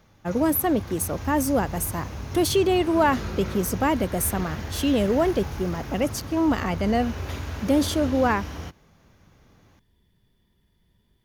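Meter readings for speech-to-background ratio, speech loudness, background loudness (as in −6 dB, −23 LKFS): 10.0 dB, −24.5 LKFS, −34.5 LKFS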